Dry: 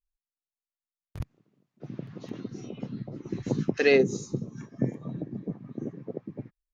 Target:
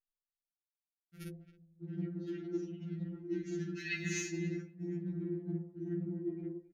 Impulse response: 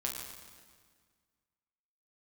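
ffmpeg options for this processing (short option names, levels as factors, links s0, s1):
-filter_complex "[0:a]aemphasis=mode=production:type=50kf,asplit=2[s0][s1];[s1]adelay=49,volume=0.596[s2];[s0][s2]amix=inputs=2:normalize=0,asplit=2[s3][s4];[1:a]atrim=start_sample=2205,lowpass=4700[s5];[s4][s5]afir=irnorm=-1:irlink=0,volume=0.708[s6];[s3][s6]amix=inputs=2:normalize=0,afftfilt=real='re*(1-between(b*sr/4096,360,1300))':imag='im*(1-between(b*sr/4096,360,1300))':win_size=4096:overlap=0.75,bandreject=f=343.8:t=h:w=4,bandreject=f=687.6:t=h:w=4,bandreject=f=1031.4:t=h:w=4,bandreject=f=1375.2:t=h:w=4,bandreject=f=1719:t=h:w=4,bandreject=f=2062.8:t=h:w=4,bandreject=f=2406.6:t=h:w=4,bandreject=f=2750.4:t=h:w=4,bandreject=f=3094.2:t=h:w=4,bandreject=f=3438:t=h:w=4,bandreject=f=3781.8:t=h:w=4,bandreject=f=4125.6:t=h:w=4,bandreject=f=4469.4:t=h:w=4,bandreject=f=4813.2:t=h:w=4,bandreject=f=5157:t=h:w=4,bandreject=f=5500.8:t=h:w=4,bandreject=f=5844.6:t=h:w=4,bandreject=f=6188.4:t=h:w=4,bandreject=f=6532.2:t=h:w=4,aphaser=in_gain=1:out_gain=1:delay=3.4:decay=0.55:speed=1:type=sinusoidal,anlmdn=1.58,equalizer=f=590:t=o:w=0.55:g=11.5,asplit=2[s7][s8];[s8]adelay=270,highpass=300,lowpass=3400,asoftclip=type=hard:threshold=0.251,volume=0.0891[s9];[s7][s9]amix=inputs=2:normalize=0,areverse,acompressor=threshold=0.0282:ratio=16,areverse,highpass=f=140:p=1,afftfilt=real='re*2.83*eq(mod(b,8),0)':imag='im*2.83*eq(mod(b,8),0)':win_size=2048:overlap=0.75,volume=1.19"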